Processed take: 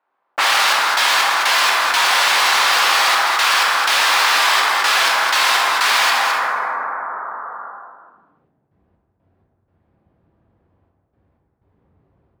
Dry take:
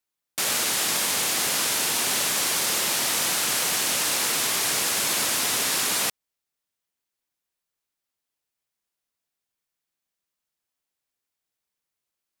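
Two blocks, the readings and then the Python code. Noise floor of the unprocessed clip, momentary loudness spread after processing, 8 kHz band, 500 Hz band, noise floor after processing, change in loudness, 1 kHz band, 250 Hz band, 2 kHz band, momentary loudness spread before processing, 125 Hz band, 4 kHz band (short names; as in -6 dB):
-85 dBFS, 12 LU, -1.0 dB, +7.0 dB, -69 dBFS, +7.5 dB, +17.0 dB, -4.5 dB, +14.5 dB, 1 LU, under -10 dB, +9.0 dB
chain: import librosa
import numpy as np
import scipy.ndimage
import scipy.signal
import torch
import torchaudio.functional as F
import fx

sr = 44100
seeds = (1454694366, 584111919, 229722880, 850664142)

p1 = scipy.signal.sosfilt(scipy.signal.butter(4, 4800.0, 'lowpass', fs=sr, output='sos'), x)
p2 = fx.low_shelf(p1, sr, hz=170.0, db=12.0)
p3 = fx.env_lowpass(p2, sr, base_hz=680.0, full_db=-22.0)
p4 = fx.leveller(p3, sr, passes=5)
p5 = fx.filter_sweep_highpass(p4, sr, from_hz=980.0, to_hz=76.0, start_s=7.34, end_s=8.74, q=1.7)
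p6 = fx.step_gate(p5, sr, bpm=62, pattern='xxx.x.x.xxxxx.x.', floor_db=-60.0, edge_ms=4.5)
p7 = p6 + fx.echo_single(p6, sr, ms=214, db=-11.0, dry=0)
p8 = fx.rev_plate(p7, sr, seeds[0], rt60_s=1.8, hf_ratio=0.35, predelay_ms=0, drr_db=-1.5)
p9 = fx.env_flatten(p8, sr, amount_pct=70)
y = F.gain(torch.from_numpy(p9), -2.0).numpy()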